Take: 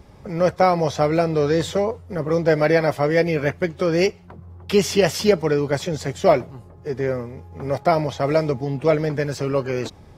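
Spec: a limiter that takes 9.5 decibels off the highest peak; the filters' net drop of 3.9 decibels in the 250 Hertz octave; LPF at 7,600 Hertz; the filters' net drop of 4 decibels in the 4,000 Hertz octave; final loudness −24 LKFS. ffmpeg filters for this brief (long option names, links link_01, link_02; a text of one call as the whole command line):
ffmpeg -i in.wav -af "lowpass=7600,equalizer=frequency=250:width_type=o:gain=-6.5,equalizer=frequency=4000:width_type=o:gain=-5,volume=1dB,alimiter=limit=-12dB:level=0:latency=1" out.wav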